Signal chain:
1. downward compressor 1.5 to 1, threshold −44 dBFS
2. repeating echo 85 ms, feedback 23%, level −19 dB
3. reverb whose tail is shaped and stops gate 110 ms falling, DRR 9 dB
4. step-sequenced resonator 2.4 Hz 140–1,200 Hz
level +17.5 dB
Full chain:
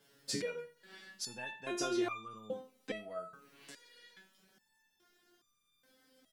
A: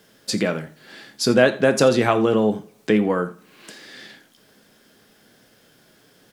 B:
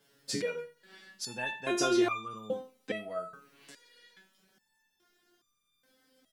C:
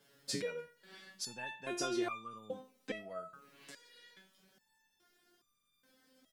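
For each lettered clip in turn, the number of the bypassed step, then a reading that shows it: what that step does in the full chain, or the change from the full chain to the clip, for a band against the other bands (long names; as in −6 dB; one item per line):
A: 4, 8 kHz band −7.5 dB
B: 1, average gain reduction 5.0 dB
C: 3, change in integrated loudness −1.0 LU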